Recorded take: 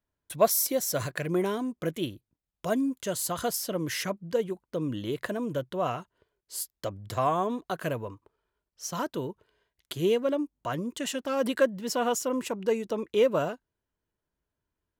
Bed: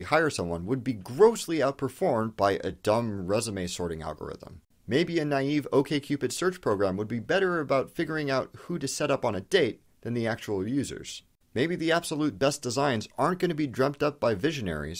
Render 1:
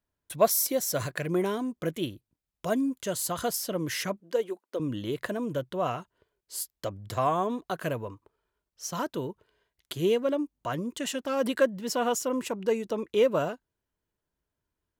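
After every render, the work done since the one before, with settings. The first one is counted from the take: 4.2–4.8 HPF 280 Hz 24 dB/oct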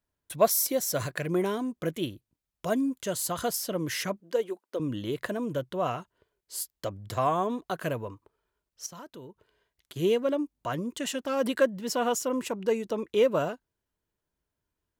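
8.86–9.96 compressor 2:1, threshold -52 dBFS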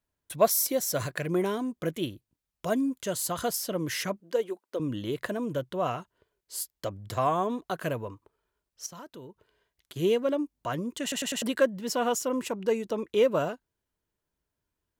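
11.02 stutter in place 0.10 s, 4 plays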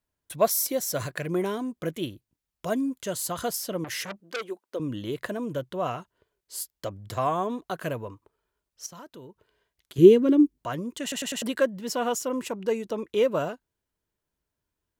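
3.84–4.44 core saturation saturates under 3100 Hz; 9.98–10.58 resonant low shelf 480 Hz +8.5 dB, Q 3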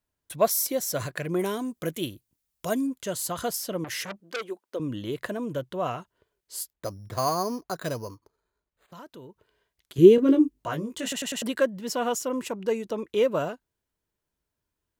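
1.39–2.87 high shelf 5400 Hz +10 dB; 6.73–8.93 careless resampling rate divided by 8×, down filtered, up hold; 10.16–11.13 doubler 19 ms -4.5 dB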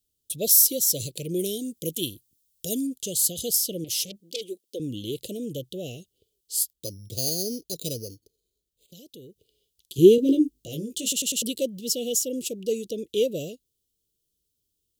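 elliptic band-stop 490–3100 Hz, stop band 50 dB; high shelf 2800 Hz +11 dB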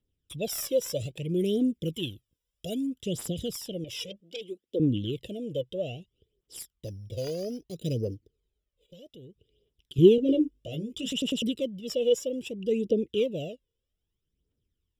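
phaser 0.62 Hz, delay 2.1 ms, feedback 63%; polynomial smoothing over 25 samples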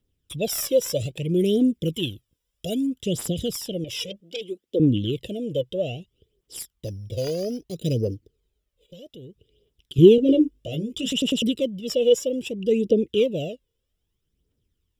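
gain +6 dB; limiter -2 dBFS, peak gain reduction 2 dB

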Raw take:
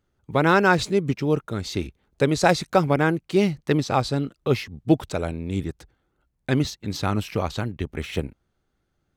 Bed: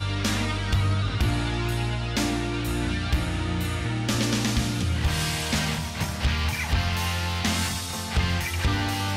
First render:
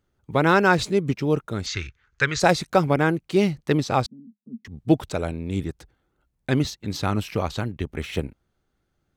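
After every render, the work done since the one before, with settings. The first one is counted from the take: 1.66–2.4 EQ curve 120 Hz 0 dB, 230 Hz -15 dB, 460 Hz -8 dB, 660 Hz -14 dB, 1500 Hz +13 dB, 2300 Hz +7 dB, 3700 Hz +2 dB, 6700 Hz +5 dB, 11000 Hz -23 dB; 4.06–4.65 Butterworth band-pass 220 Hz, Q 5.8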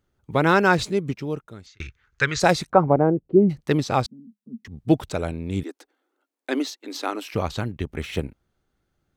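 0.75–1.8 fade out; 2.7–3.49 synth low-pass 1200 Hz -> 290 Hz, resonance Q 1.9; 5.63–7.34 elliptic high-pass 270 Hz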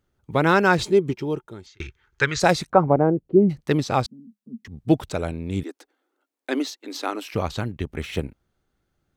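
0.79–2.25 small resonant body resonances 370/880/3200 Hz, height 10 dB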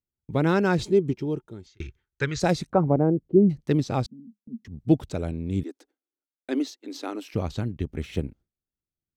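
gate with hold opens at -43 dBFS; EQ curve 270 Hz 0 dB, 1100 Hz -10 dB, 6200 Hz -6 dB, 11000 Hz -9 dB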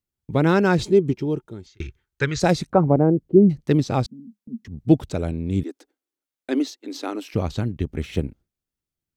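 gain +4 dB

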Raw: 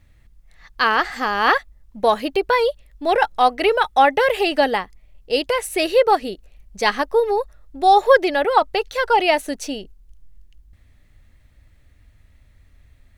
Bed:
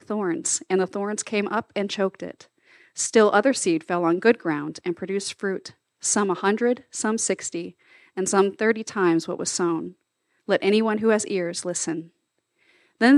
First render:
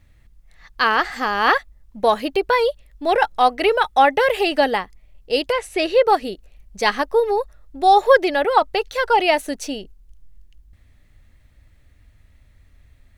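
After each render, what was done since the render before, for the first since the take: 5.52–6.05 air absorption 61 m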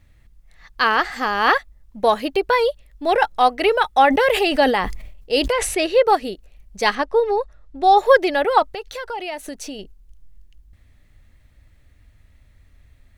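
4.06–5.86 sustainer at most 52 dB/s; 6.95–7.98 air absorption 66 m; 8.65–9.79 compressor 3:1, threshold -29 dBFS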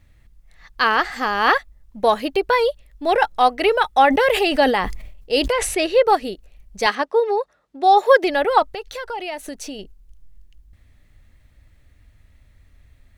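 6.86–8.24 HPF 240 Hz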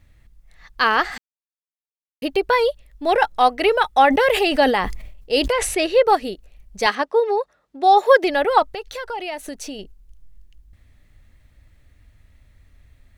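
1.18–2.22 mute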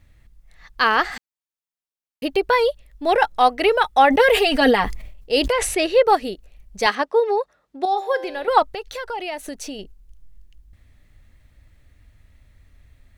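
4.19–4.84 comb 4.3 ms, depth 72%; 7.85–8.48 resonator 130 Hz, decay 1 s, mix 70%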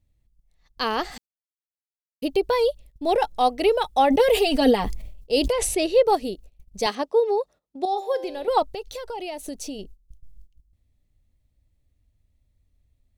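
gate -42 dBFS, range -14 dB; bell 1600 Hz -14 dB 1.4 oct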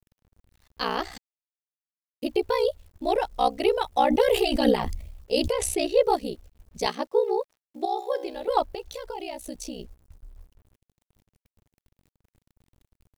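requantised 10-bit, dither none; ring modulator 31 Hz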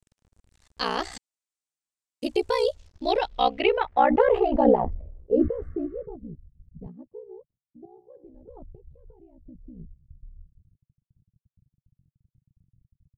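5.39–6.07 painted sound noise 1100–2200 Hz -35 dBFS; low-pass sweep 8100 Hz -> 140 Hz, 2.58–6.27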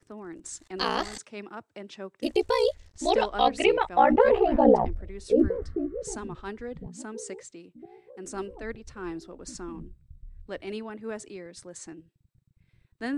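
add bed -16 dB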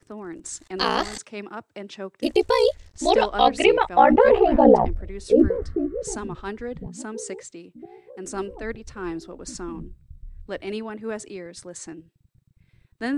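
gain +5 dB; limiter -3 dBFS, peak gain reduction 2 dB

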